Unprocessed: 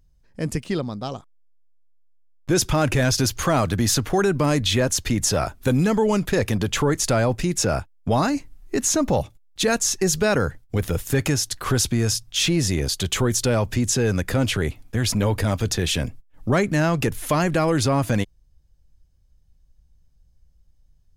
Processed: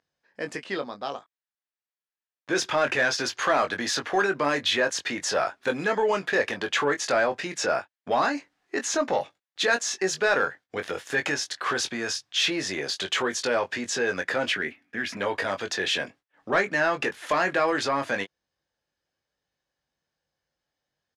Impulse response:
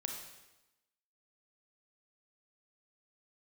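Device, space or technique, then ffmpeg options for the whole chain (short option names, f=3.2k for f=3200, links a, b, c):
intercom: -filter_complex "[0:a]asettb=1/sr,asplit=3[a][b][c];[a]atrim=end=14.524[d];[b]atrim=start=14.52:end=15.17,asetpts=PTS-STARTPTS,afade=t=in:d=0.004:c=qsin,afade=t=out:st=0.646:d=0.004:c=qsin,equalizer=f=125:t=o:w=1:g=-4,equalizer=f=250:t=o:w=1:g=7,equalizer=f=500:t=o:w=1:g=-8,equalizer=f=1k:t=o:w=1:g=-10,equalizer=f=2k:t=o:w=1:g=5,equalizer=f=4k:t=o:w=1:g=-8,equalizer=f=8k:t=o:w=1:g=-8[e];[c]atrim=start=15.166[f];[d][e]acrossfade=d=0.004:c1=hsin:c2=qsin[g];[g][f]acrossfade=d=0.004:c1=qsin:c2=hsin,highpass=490,lowpass=4.3k,equalizer=f=1.7k:t=o:w=0.37:g=6,asoftclip=type=tanh:threshold=-12.5dB,asplit=2[h][i];[i]adelay=21,volume=-7dB[j];[h][j]amix=inputs=2:normalize=0"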